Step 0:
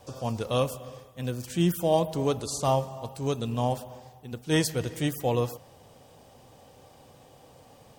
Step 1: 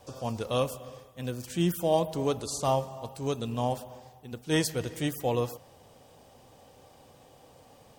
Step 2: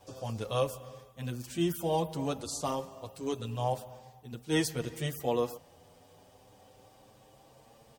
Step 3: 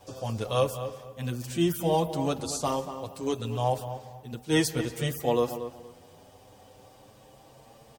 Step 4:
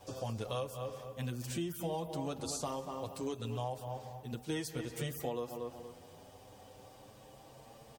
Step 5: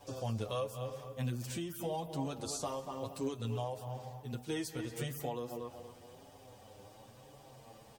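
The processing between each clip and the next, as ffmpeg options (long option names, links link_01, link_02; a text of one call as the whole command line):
ffmpeg -i in.wav -af "equalizer=frequency=130:width=1.3:gain=-2.5,volume=-1.5dB" out.wav
ffmpeg -i in.wav -filter_complex "[0:a]asplit=2[link_01][link_02];[link_02]adelay=7.6,afreqshift=0.31[link_03];[link_01][link_03]amix=inputs=2:normalize=1" out.wav
ffmpeg -i in.wav -filter_complex "[0:a]asplit=2[link_01][link_02];[link_02]adelay=234,lowpass=frequency=2400:poles=1,volume=-10.5dB,asplit=2[link_03][link_04];[link_04]adelay=234,lowpass=frequency=2400:poles=1,volume=0.25,asplit=2[link_05][link_06];[link_06]adelay=234,lowpass=frequency=2400:poles=1,volume=0.25[link_07];[link_01][link_03][link_05][link_07]amix=inputs=4:normalize=0,volume=4.5dB" out.wav
ffmpeg -i in.wav -af "acompressor=threshold=-33dB:ratio=6,volume=-2dB" out.wav
ffmpeg -i in.wav -af "flanger=delay=6.8:depth=3.3:regen=45:speed=0.95:shape=triangular,volume=3.5dB" out.wav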